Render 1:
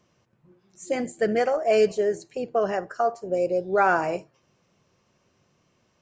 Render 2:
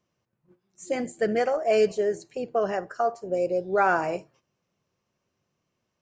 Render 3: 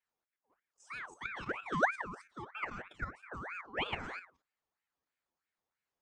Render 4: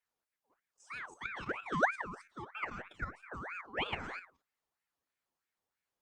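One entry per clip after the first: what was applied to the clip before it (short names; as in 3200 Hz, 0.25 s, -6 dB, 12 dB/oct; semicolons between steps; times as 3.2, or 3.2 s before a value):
gate -55 dBFS, range -10 dB; gain -1.5 dB
metallic resonator 84 Hz, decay 0.32 s, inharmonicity 0.002; level quantiser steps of 10 dB; ring modulator with a swept carrier 1300 Hz, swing 55%, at 3.1 Hz
Opus 64 kbps 48000 Hz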